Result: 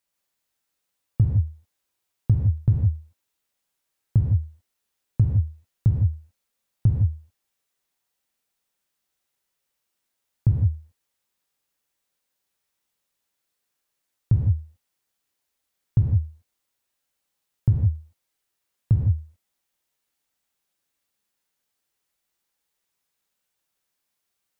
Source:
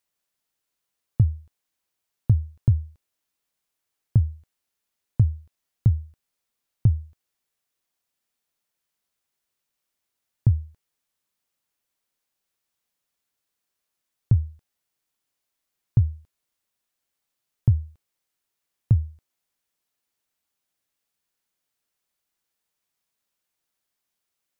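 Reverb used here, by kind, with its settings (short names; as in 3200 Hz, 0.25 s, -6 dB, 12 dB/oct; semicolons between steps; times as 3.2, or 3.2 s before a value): non-linear reverb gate 0.19 s flat, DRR -1.5 dB; gain -1.5 dB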